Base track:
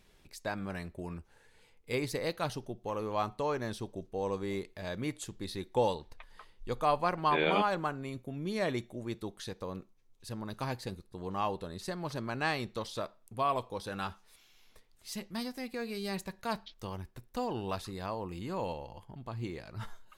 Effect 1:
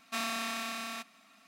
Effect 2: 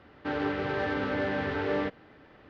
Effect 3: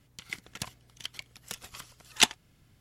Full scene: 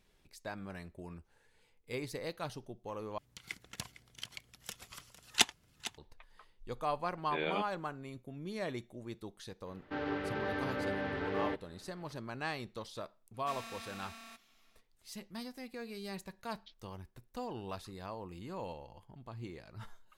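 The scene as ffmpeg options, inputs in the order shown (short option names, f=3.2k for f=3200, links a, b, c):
-filter_complex "[0:a]volume=-6.5dB[a];[3:a]aecho=1:1:455:0.178[b];[a]asplit=2[c][d];[c]atrim=end=3.184[e];[b]atrim=end=2.8,asetpts=PTS-STARTPTS,volume=-5.5dB[f];[d]atrim=start=5.976[g];[2:a]atrim=end=2.49,asetpts=PTS-STARTPTS,volume=-6.5dB,afade=t=in:d=0.004:c=hsin,afade=t=out:st=2.486:d=0.004:c=hsin,adelay=9660[h];[1:a]atrim=end=1.47,asetpts=PTS-STARTPTS,volume=-12.5dB,afade=t=in:d=0.004:c=hsin,afade=t=out:st=1.466:d=0.004:c=hsin,adelay=13340[i];[e][f]acrossfade=d=0.004:c1=hsin:c2=hsin[j];[j][g]acrossfade=d=0.004:c1=hsin:c2=hsin[k];[k][h][i]amix=inputs=3:normalize=0"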